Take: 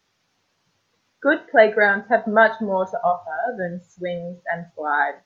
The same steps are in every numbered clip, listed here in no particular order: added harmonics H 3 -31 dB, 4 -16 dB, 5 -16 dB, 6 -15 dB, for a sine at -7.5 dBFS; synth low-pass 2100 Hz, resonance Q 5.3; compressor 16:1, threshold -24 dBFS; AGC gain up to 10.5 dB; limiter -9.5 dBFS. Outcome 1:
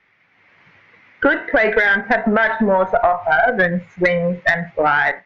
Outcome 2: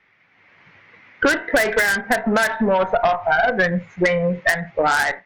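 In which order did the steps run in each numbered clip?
synth low-pass > limiter > compressor > added harmonics > AGC; limiter > synth low-pass > added harmonics > compressor > AGC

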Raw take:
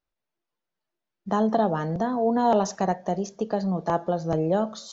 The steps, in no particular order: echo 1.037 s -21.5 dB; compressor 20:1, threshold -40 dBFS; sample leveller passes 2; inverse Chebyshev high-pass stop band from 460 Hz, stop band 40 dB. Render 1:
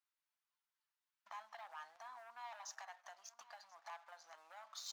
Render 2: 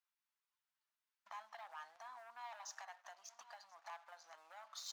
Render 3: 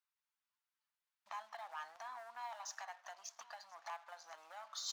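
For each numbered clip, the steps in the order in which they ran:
sample leveller > echo > compressor > inverse Chebyshev high-pass; echo > sample leveller > compressor > inverse Chebyshev high-pass; compressor > echo > sample leveller > inverse Chebyshev high-pass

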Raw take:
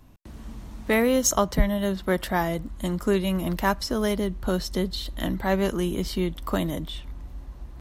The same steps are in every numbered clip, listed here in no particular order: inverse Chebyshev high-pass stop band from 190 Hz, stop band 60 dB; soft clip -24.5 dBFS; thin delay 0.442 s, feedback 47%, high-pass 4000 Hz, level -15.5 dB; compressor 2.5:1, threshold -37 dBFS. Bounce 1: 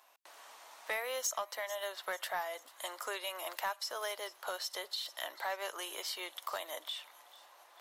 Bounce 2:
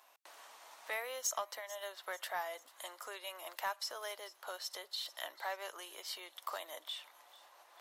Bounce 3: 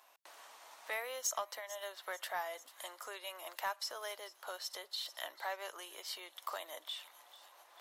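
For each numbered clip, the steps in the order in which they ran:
inverse Chebyshev high-pass > compressor > thin delay > soft clip; compressor > inverse Chebyshev high-pass > soft clip > thin delay; thin delay > compressor > inverse Chebyshev high-pass > soft clip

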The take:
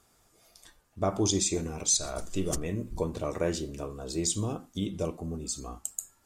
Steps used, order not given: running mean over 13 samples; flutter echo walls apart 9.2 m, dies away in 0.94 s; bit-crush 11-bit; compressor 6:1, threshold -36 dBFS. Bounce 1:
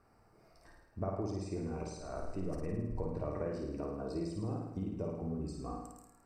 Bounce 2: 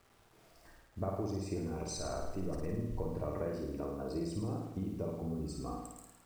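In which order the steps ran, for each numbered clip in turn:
compressor > flutter echo > bit-crush > running mean; running mean > compressor > bit-crush > flutter echo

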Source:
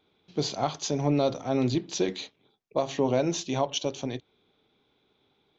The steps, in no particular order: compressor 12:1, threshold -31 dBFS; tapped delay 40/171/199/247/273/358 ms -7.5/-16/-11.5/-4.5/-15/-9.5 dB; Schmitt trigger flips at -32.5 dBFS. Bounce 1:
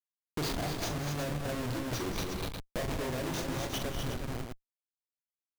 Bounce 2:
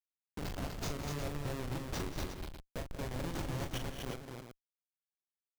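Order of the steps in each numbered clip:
Schmitt trigger > tapped delay > compressor; compressor > Schmitt trigger > tapped delay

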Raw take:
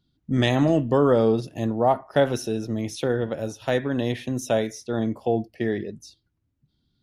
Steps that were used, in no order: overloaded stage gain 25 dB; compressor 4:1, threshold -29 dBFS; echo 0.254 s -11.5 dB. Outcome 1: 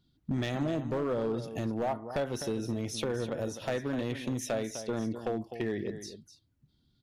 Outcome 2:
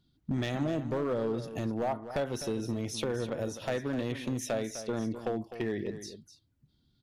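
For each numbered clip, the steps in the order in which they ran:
compressor > echo > overloaded stage; compressor > overloaded stage > echo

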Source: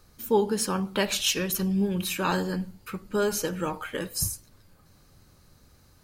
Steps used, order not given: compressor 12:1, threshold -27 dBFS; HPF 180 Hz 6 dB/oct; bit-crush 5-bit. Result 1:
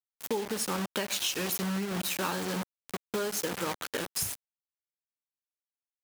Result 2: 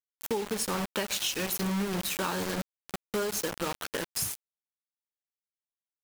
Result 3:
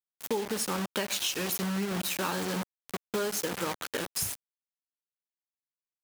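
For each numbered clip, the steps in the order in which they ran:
bit-crush > compressor > HPF; HPF > bit-crush > compressor; bit-crush > HPF > compressor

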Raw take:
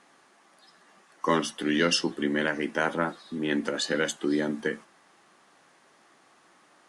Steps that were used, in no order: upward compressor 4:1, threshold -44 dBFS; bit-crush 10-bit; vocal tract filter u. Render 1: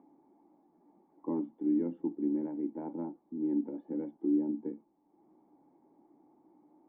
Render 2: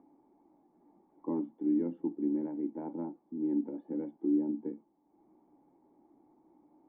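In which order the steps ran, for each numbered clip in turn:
upward compressor > bit-crush > vocal tract filter; bit-crush > upward compressor > vocal tract filter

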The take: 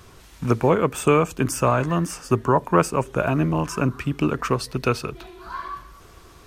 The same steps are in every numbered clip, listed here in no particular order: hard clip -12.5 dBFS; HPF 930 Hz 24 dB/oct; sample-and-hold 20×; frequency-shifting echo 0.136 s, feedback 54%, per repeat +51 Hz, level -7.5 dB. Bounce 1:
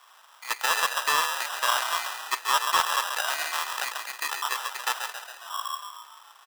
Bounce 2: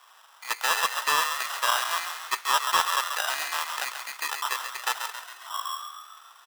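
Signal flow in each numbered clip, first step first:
frequency-shifting echo > sample-and-hold > HPF > hard clip; sample-and-hold > HPF > frequency-shifting echo > hard clip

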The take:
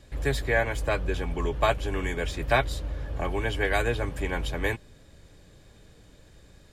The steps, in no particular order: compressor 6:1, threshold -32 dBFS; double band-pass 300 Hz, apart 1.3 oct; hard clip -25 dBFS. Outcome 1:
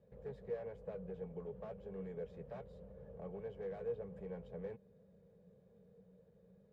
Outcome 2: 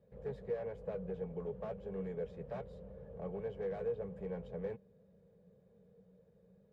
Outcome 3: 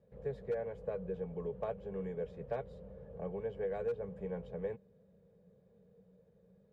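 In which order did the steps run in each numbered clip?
hard clip > compressor > double band-pass; hard clip > double band-pass > compressor; double band-pass > hard clip > compressor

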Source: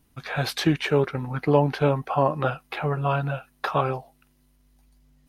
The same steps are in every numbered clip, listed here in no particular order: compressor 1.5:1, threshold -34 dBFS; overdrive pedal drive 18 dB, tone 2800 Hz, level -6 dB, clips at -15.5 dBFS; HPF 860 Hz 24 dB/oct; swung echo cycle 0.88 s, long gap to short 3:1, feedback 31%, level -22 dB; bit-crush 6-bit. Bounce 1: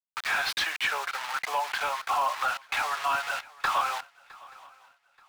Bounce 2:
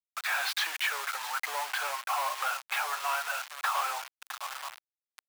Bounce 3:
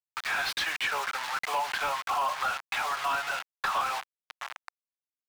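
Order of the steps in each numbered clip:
bit-crush > compressor > HPF > overdrive pedal > swung echo; swung echo > overdrive pedal > compressor > bit-crush > HPF; swung echo > bit-crush > HPF > overdrive pedal > compressor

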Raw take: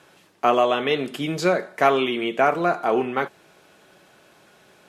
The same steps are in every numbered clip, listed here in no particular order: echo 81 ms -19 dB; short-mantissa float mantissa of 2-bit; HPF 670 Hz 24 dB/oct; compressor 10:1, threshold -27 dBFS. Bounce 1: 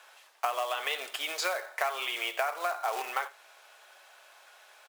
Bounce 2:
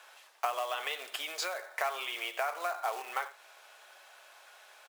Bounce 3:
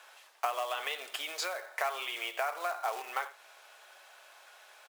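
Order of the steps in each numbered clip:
short-mantissa float > HPF > compressor > echo; echo > short-mantissa float > compressor > HPF; short-mantissa float > echo > compressor > HPF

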